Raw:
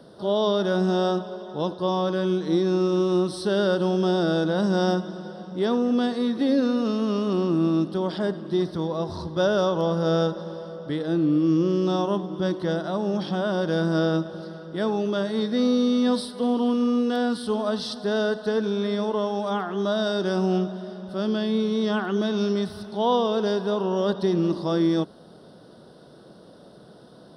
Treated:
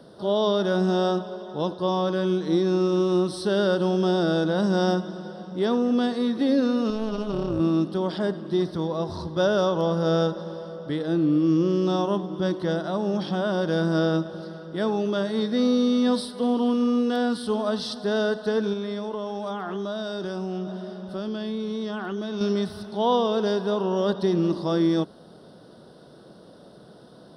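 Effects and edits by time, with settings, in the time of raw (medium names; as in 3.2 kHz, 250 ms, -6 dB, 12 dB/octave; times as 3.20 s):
6.90–7.60 s: AM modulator 220 Hz, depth 80%
18.73–22.41 s: compression, threshold -26 dBFS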